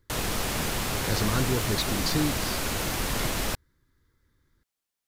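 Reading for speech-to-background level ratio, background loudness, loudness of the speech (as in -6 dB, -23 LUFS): -2.5 dB, -28.5 LUFS, -31.0 LUFS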